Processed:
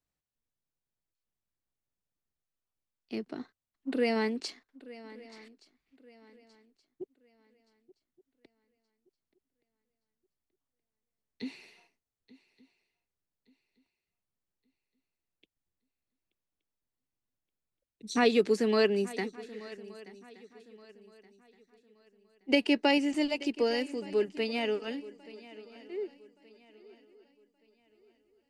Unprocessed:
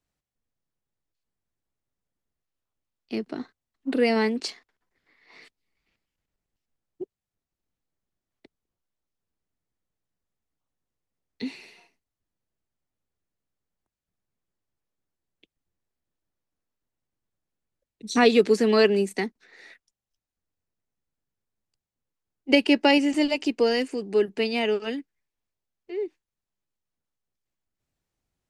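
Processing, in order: shuffle delay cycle 1173 ms, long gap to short 3:1, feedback 32%, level -19 dB; trim -6.5 dB

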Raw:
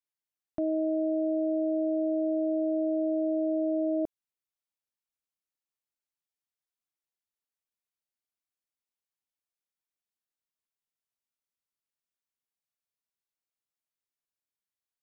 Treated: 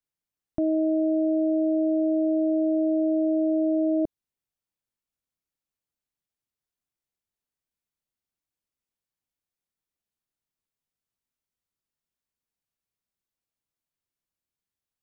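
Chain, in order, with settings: bass shelf 340 Hz +11 dB

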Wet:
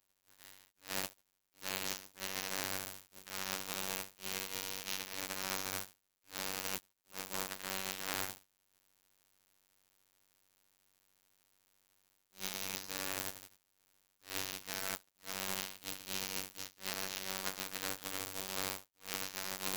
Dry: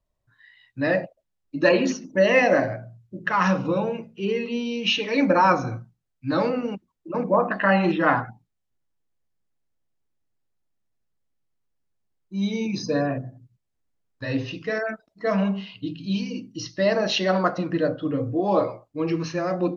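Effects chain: spectral contrast reduction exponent 0.13; robot voice 95.4 Hz; reverse; compression 12:1, threshold -31 dBFS, peak gain reduction 20.5 dB; reverse; attacks held to a fixed rise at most 270 dB/s; trim -1 dB

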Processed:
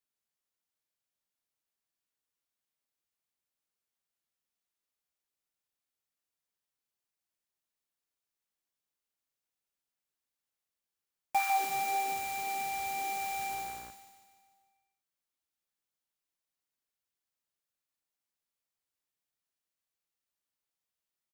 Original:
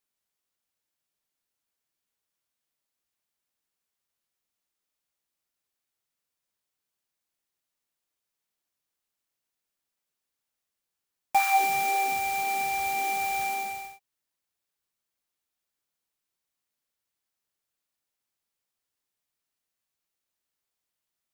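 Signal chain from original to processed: feedback delay 149 ms, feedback 56%, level -9 dB; 13.49–13.90 s: mains buzz 60 Hz, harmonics 29, -49 dBFS -2 dB/octave; trim -6.5 dB

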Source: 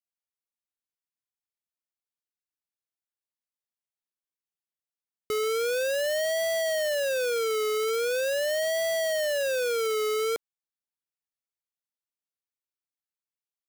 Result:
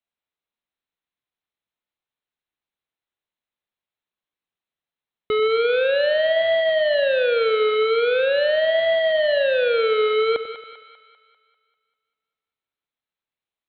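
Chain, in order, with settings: Chebyshev low-pass 4.1 kHz, order 8; two-band feedback delay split 720 Hz, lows 92 ms, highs 197 ms, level -11 dB; trim +8 dB

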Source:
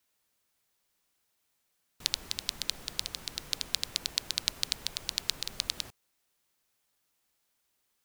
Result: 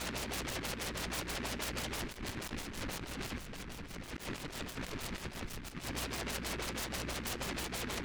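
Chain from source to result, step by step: jump at every zero crossing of -20.5 dBFS; 3.38–4.05 s: tone controls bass +4 dB, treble -12 dB; expander -13 dBFS; decimation with a swept rate 12×, swing 60% 2.3 Hz; on a send at -9 dB: reverberation RT60 0.55 s, pre-delay 3 ms; on the sum: hum 60 Hz, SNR 11 dB; LFO low-pass sine 6.2 Hz 250–4000 Hz; compressor with a negative ratio -50 dBFS, ratio -0.5; 5.44–5.86 s: peaking EQ 610 Hz -13 dB -> -2.5 dB 1.7 oct; delay time shaken by noise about 1.6 kHz, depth 0.28 ms; trim +10.5 dB

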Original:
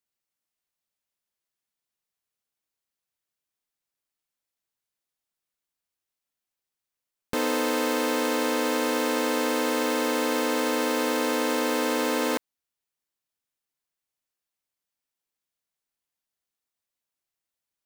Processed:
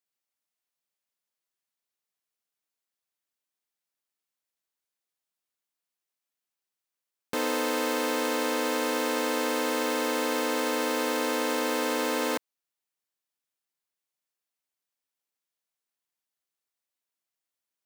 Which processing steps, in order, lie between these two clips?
high-pass 230 Hz 6 dB/octave; trim -1.5 dB

